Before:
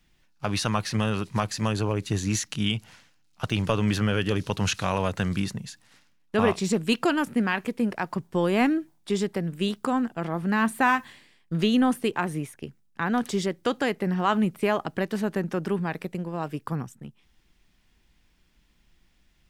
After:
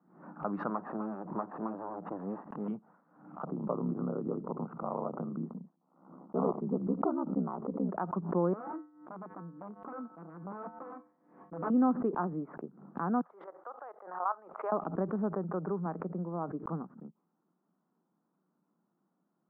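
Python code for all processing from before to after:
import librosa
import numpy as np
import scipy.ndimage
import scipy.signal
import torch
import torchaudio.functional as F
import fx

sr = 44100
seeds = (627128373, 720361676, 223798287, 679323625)

y = fx.chain(x, sr, fx.lower_of_two(delay_ms=1.1),
    fx.peak_eq(hz=140.0, db=-6.0, octaves=0.83), at=(0.69, 2.68))
y = fx.chain(y, sr, fx.savgol(points=65),
    fx.ring_mod(carrier_hz=34.0), at=(3.44, 7.89))
y = fx.chain(y, sr, fx.low_shelf(hz=200.0, db=3.5),
    fx.overflow_wrap(gain_db=19.0),
    fx.comb_fb(f0_hz=100.0, decay_s=0.44, harmonics='odd', damping=0.0, mix_pct=80), at=(8.53, 11.7))
y = fx.chain(y, sr, fx.highpass(hz=660.0, slope=24),
    fx.level_steps(step_db=12), at=(13.21, 14.72))
y = fx.chain(y, sr, fx.lowpass(hz=2400.0, slope=12),
    fx.peak_eq(hz=250.0, db=-12.0, octaves=0.5), at=(15.29, 15.86))
y = fx.wiener(y, sr, points=9)
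y = scipy.signal.sosfilt(scipy.signal.cheby1(4, 1.0, [170.0, 1300.0], 'bandpass', fs=sr, output='sos'), y)
y = fx.pre_swell(y, sr, db_per_s=92.0)
y = F.gain(torch.from_numpy(y), -4.5).numpy()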